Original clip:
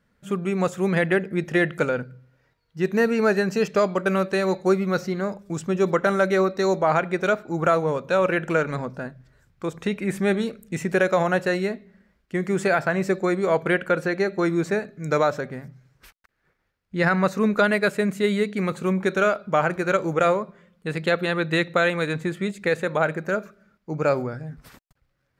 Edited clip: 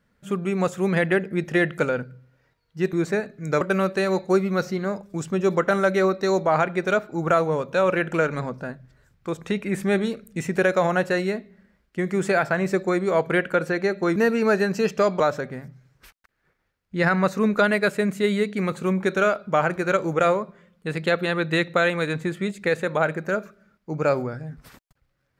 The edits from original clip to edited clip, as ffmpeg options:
-filter_complex "[0:a]asplit=5[a][b][c][d][e];[a]atrim=end=2.932[f];[b]atrim=start=14.518:end=15.202[g];[c]atrim=start=3.968:end=14.522[h];[d]atrim=start=2.928:end=3.972[i];[e]atrim=start=15.198[j];[f][g]acrossfade=d=0.004:c1=hsin:c2=hsin[k];[k][h]acrossfade=d=0.004:c1=hsin:c2=hsin[l];[l][i]acrossfade=d=0.004:c1=hsin:c2=hsin[m];[m][j]acrossfade=d=0.004:c1=hsin:c2=hsin"

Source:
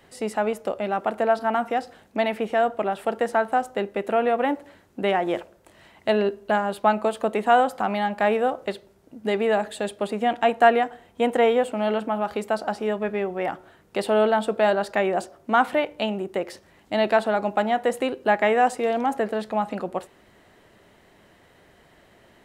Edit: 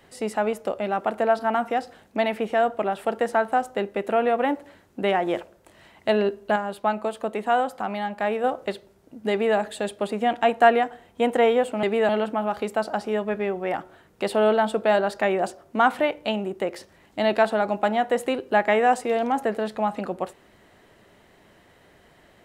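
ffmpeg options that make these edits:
-filter_complex "[0:a]asplit=5[a][b][c][d][e];[a]atrim=end=6.562[f];[b]atrim=start=6.558:end=8.442,asetpts=PTS-STARTPTS,volume=-4dB[g];[c]atrim=start=8.438:end=11.832[h];[d]atrim=start=9.308:end=9.572[i];[e]atrim=start=11.828[j];[f][g]acrossfade=d=0.004:c1=hsin:c2=hsin[k];[k][h]acrossfade=d=0.004:c1=hsin:c2=hsin[l];[l][i]acrossfade=d=0.004:c1=hsin:c2=hsin[m];[m][j]acrossfade=d=0.004:c1=hsin:c2=hsin"

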